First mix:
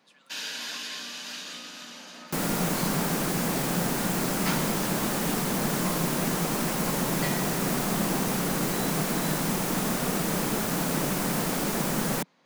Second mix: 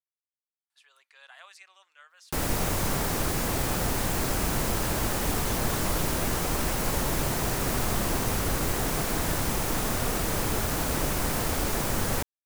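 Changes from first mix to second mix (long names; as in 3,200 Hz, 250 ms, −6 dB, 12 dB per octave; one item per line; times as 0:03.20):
speech: entry +0.70 s
first sound: muted
master: add low shelf with overshoot 120 Hz +12.5 dB, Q 3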